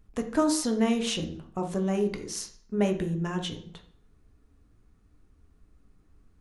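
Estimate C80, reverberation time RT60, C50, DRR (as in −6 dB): 14.5 dB, 0.55 s, 10.5 dB, 4.0 dB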